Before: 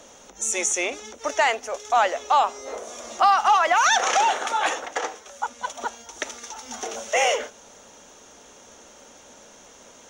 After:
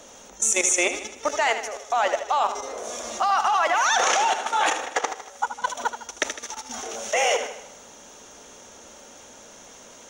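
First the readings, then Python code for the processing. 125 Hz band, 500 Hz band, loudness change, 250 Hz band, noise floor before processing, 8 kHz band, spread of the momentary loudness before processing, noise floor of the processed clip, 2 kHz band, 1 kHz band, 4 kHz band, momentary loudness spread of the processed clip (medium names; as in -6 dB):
no reading, 0.0 dB, -1.0 dB, +2.0 dB, -49 dBFS, +2.5 dB, 16 LU, -47 dBFS, -0.5 dB, -2.0 dB, 0.0 dB, 13 LU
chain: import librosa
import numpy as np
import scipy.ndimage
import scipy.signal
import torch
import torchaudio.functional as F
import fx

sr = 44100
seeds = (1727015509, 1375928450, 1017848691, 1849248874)

p1 = fx.high_shelf(x, sr, hz=7900.0, db=3.0)
p2 = fx.level_steps(p1, sr, step_db=13)
p3 = p2 + fx.echo_feedback(p2, sr, ms=78, feedback_pct=51, wet_db=-10, dry=0)
y = p3 * 10.0 ** (5.0 / 20.0)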